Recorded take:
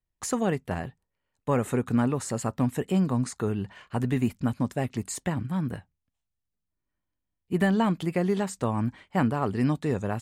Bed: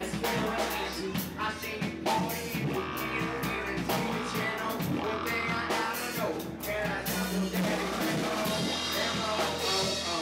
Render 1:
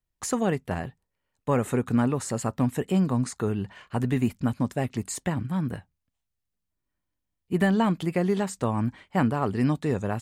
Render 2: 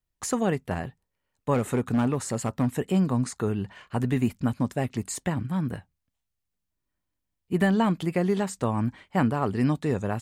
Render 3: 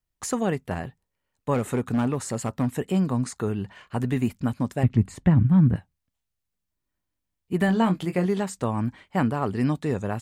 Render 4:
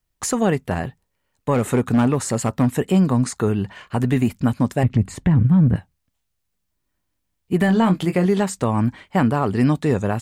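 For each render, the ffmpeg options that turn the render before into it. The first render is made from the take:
ffmpeg -i in.wav -af "volume=1dB" out.wav
ffmpeg -i in.wav -filter_complex "[0:a]asettb=1/sr,asplit=3[link_01][link_02][link_03];[link_01]atrim=end=1.544[link_04];[link_02]atrim=start=1.54:end=2.72,asetpts=PTS-STARTPTS,afade=type=in:duration=0.004:curve=qsin,afade=type=out:start_time=1.176:duration=0.004:curve=qsin,volume=18.5dB,asoftclip=hard,volume=-18.5dB[link_05];[link_03]atrim=start=2.716[link_06];[link_04][link_05]acrossfade=duration=0.004:curve1=hsin:curve2=qsin[link_07];[link_07][link_06]acrossfade=duration=0.004:curve1=qsin:curve2=hsin" out.wav
ffmpeg -i in.wav -filter_complex "[0:a]asettb=1/sr,asplit=3[link_01][link_02][link_03];[link_01]atrim=end=4.834[link_04];[link_02]atrim=start=4.83:end=5.76,asetpts=PTS-STARTPTS,afade=type=in:duration=0.004:curve=qsin,afade=type=out:start_time=0.926:duration=0.004:curve=qsin,bass=frequency=250:gain=14,treble=frequency=4000:gain=-14[link_05];[link_03]atrim=start=5.756[link_06];[link_04][link_05]acrossfade=duration=0.004:curve1=hsin:curve2=qsin[link_07];[link_07][link_06]acrossfade=duration=0.004:curve1=qsin:curve2=hsin,asettb=1/sr,asplit=3[link_08][link_09][link_10];[link_08]atrim=end=7.664[link_11];[link_09]atrim=start=7.66:end=8.26,asetpts=PTS-STARTPTS,afade=type=in:duration=0.004:curve=qsin,afade=type=out:start_time=0.596:duration=0.004:curve=qsin,asplit=2[link_12][link_13];[link_13]adelay=22,volume=-8dB[link_14];[link_12][link_14]amix=inputs=2:normalize=0,atrim=end_sample=26460[link_15];[link_10]atrim=start=8.256[link_16];[link_11][link_15]acrossfade=duration=0.004:curve1=hsin:curve2=qsin[link_17];[link_17][link_16]acrossfade=duration=0.004:curve1=qsin:curve2=hsin" out.wav
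ffmpeg -i in.wav -af "acontrast=89,alimiter=limit=-9dB:level=0:latency=1:release=101" out.wav

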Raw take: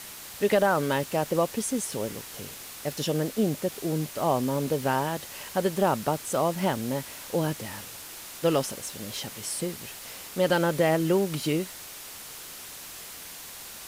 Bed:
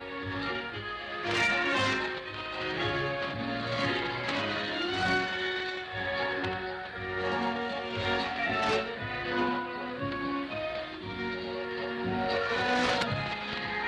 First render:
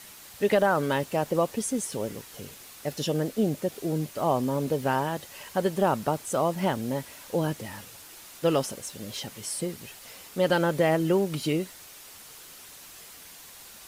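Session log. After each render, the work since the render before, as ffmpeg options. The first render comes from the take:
ffmpeg -i in.wav -af "afftdn=noise_reduction=6:noise_floor=-42" out.wav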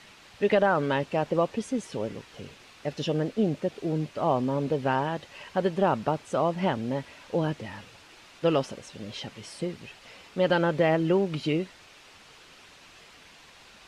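ffmpeg -i in.wav -af "lowpass=4000,equalizer=frequency=2600:width=4.5:gain=3" out.wav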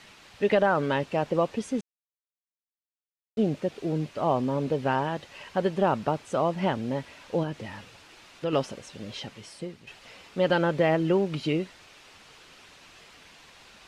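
ffmpeg -i in.wav -filter_complex "[0:a]asettb=1/sr,asplit=3[link_01][link_02][link_03];[link_01]atrim=end=7.434[link_04];[link_02]atrim=start=7.43:end=8.53,asetpts=PTS-STARTPTS,afade=type=in:duration=0.004:curve=qsin,afade=type=out:start_time=1.096:duration=0.004:curve=qsin,acompressor=threshold=-29dB:ratio=2:attack=3.2:release=140:knee=1:detection=peak[link_05];[link_03]atrim=start=8.526[link_06];[link_04][link_05]acrossfade=duration=0.004:curve1=hsin:curve2=qsin[link_07];[link_07][link_06]acrossfade=duration=0.004:curve1=qsin:curve2=hsin,asplit=4[link_08][link_09][link_10][link_11];[link_08]atrim=end=1.81,asetpts=PTS-STARTPTS,afade=type=out:start_time=1.806:duration=0.004:curve=hsin[link_12];[link_09]atrim=start=1.81:end=3.37,asetpts=PTS-STARTPTS,volume=0[link_13];[link_10]atrim=start=3.37:end=9.87,asetpts=PTS-STARTPTS,afade=type=in:duration=0.004:curve=hsin,afade=type=out:start_time=5.81:duration=0.69:silence=0.354813[link_14];[link_11]atrim=start=9.87,asetpts=PTS-STARTPTS,afade=type=in:duration=0.004:curve=hsin:silence=0.354813[link_15];[link_12][link_13][link_14][link_15]concat=n=4:v=0:a=1" out.wav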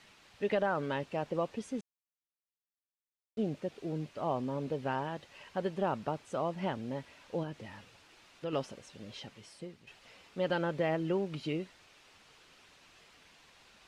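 ffmpeg -i in.wav -af "volume=-8.5dB" out.wav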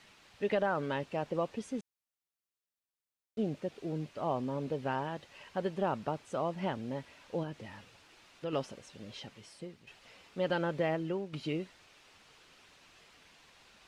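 ffmpeg -i in.wav -filter_complex "[0:a]asplit=2[link_01][link_02];[link_01]atrim=end=11.33,asetpts=PTS-STARTPTS,afade=type=out:start_time=10.85:duration=0.48:silence=0.421697[link_03];[link_02]atrim=start=11.33,asetpts=PTS-STARTPTS,afade=type=in:duration=0.004:curve=hsin:silence=0.421697[link_04];[link_03][link_04]concat=n=2:v=0:a=1" out.wav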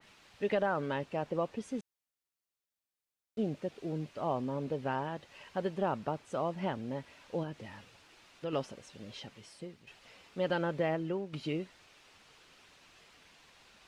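ffmpeg -i in.wav -af "adynamicequalizer=threshold=0.00355:dfrequency=2300:dqfactor=0.7:tfrequency=2300:tqfactor=0.7:attack=5:release=100:ratio=0.375:range=1.5:mode=cutabove:tftype=highshelf" out.wav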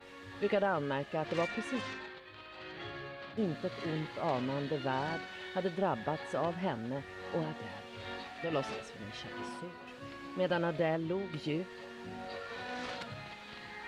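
ffmpeg -i in.wav -i bed.wav -filter_complex "[1:a]volume=-13.5dB[link_01];[0:a][link_01]amix=inputs=2:normalize=0" out.wav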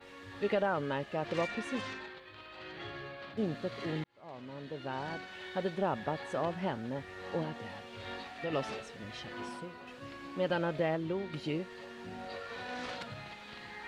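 ffmpeg -i in.wav -filter_complex "[0:a]asplit=2[link_01][link_02];[link_01]atrim=end=4.04,asetpts=PTS-STARTPTS,afade=type=out:start_time=4.036:duration=0.004:curve=hsin[link_03];[link_02]atrim=start=4.04,asetpts=PTS-STARTPTS,afade=type=in:duration=1.51[link_04];[link_03][link_04]concat=n=2:v=0:a=1" out.wav

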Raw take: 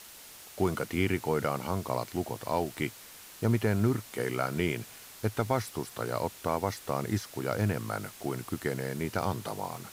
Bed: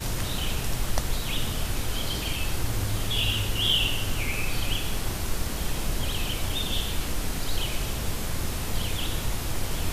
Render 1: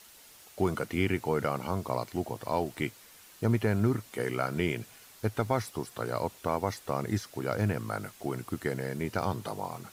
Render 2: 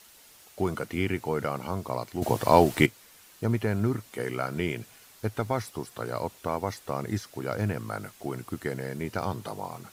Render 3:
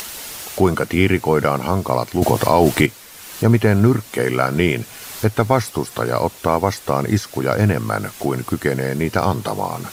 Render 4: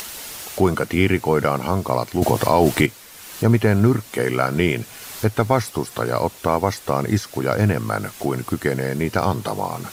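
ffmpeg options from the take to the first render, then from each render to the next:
ffmpeg -i in.wav -af "afftdn=noise_reduction=6:noise_floor=-50" out.wav
ffmpeg -i in.wav -filter_complex "[0:a]asplit=3[link_01][link_02][link_03];[link_01]atrim=end=2.222[link_04];[link_02]atrim=start=2.218:end=2.862,asetpts=PTS-STARTPTS,volume=11.5dB[link_05];[link_03]atrim=start=2.858[link_06];[link_04][link_05]acrossfade=duration=0.004:curve1=hsin:curve2=hsin[link_07];[link_07][link_06]acrossfade=duration=0.004:curve1=hsin:curve2=hsin" out.wav
ffmpeg -i in.wav -filter_complex "[0:a]asplit=2[link_01][link_02];[link_02]acompressor=mode=upward:threshold=-28dB:ratio=2.5,volume=1.5dB[link_03];[link_01][link_03]amix=inputs=2:normalize=0,alimiter=level_in=6dB:limit=-1dB:release=50:level=0:latency=1" out.wav
ffmpeg -i in.wav -af "volume=-2dB" out.wav

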